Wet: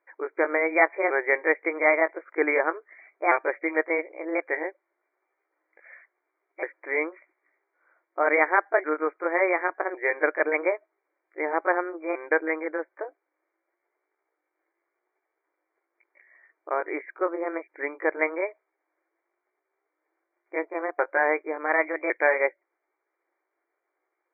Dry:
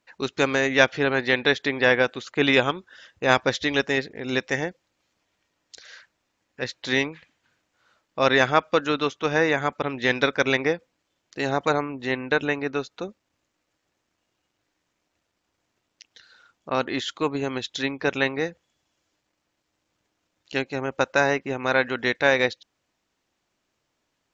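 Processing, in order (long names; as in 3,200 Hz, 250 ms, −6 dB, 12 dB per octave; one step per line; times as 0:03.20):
pitch shifter swept by a sawtooth +5 semitones, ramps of 1,105 ms
linear-phase brick-wall band-pass 300–2,400 Hz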